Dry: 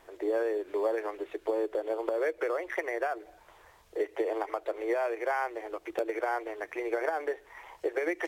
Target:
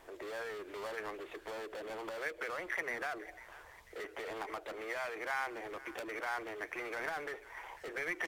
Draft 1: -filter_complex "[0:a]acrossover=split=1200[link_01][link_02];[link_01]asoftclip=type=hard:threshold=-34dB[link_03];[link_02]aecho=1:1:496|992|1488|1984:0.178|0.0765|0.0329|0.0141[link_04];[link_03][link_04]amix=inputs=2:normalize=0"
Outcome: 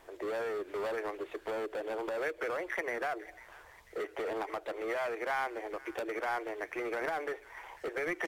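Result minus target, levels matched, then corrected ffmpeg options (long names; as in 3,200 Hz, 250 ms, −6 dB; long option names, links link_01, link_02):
hard clipping: distortion −4 dB
-filter_complex "[0:a]acrossover=split=1200[link_01][link_02];[link_01]asoftclip=type=hard:threshold=-43.5dB[link_03];[link_02]aecho=1:1:496|992|1488|1984:0.178|0.0765|0.0329|0.0141[link_04];[link_03][link_04]amix=inputs=2:normalize=0"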